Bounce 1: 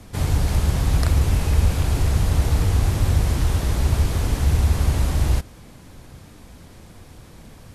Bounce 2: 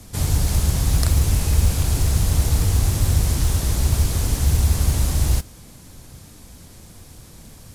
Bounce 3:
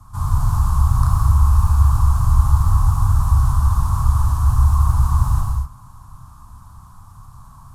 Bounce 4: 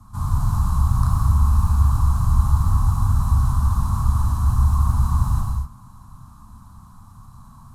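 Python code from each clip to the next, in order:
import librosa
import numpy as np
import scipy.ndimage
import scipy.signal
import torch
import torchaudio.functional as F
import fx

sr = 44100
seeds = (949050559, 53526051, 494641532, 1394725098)

y1 = fx.bass_treble(x, sr, bass_db=3, treble_db=11)
y1 = fx.mod_noise(y1, sr, seeds[0], snr_db=29)
y1 = y1 * 10.0 ** (-2.5 / 20.0)
y2 = fx.curve_eq(y1, sr, hz=(120.0, 480.0, 1100.0, 2000.0, 9000.0), db=(0, -27, 13, -22, -14))
y2 = fx.rev_gated(y2, sr, seeds[1], gate_ms=280, shape='flat', drr_db=-2.0)
y3 = fx.small_body(y2, sr, hz=(220.0, 4000.0), ring_ms=35, db=11)
y3 = y3 * 10.0 ** (-3.5 / 20.0)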